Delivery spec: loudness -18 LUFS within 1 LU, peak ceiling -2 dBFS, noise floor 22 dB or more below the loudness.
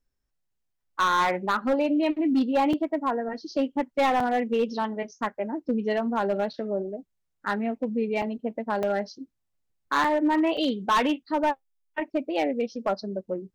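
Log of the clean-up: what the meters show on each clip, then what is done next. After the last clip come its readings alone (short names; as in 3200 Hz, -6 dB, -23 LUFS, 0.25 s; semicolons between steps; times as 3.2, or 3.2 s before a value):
clipped 1.3%; flat tops at -17.5 dBFS; dropouts 6; longest dropout 3.8 ms; loudness -26.5 LUFS; peak -17.5 dBFS; loudness target -18.0 LUFS
-> clip repair -17.5 dBFS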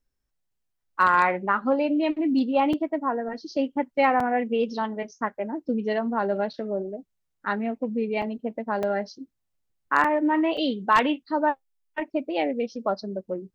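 clipped 0.0%; dropouts 6; longest dropout 3.8 ms
-> interpolate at 2.73/4.2/8.22/8.83/10.04/10.57, 3.8 ms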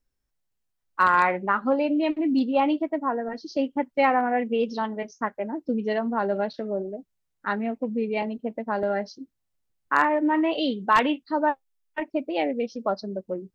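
dropouts 0; loudness -25.5 LUFS; peak -8.5 dBFS; loudness target -18.0 LUFS
-> gain +7.5 dB; limiter -2 dBFS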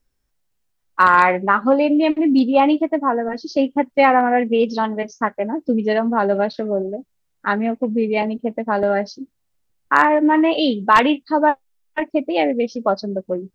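loudness -18.0 LUFS; peak -2.0 dBFS; noise floor -70 dBFS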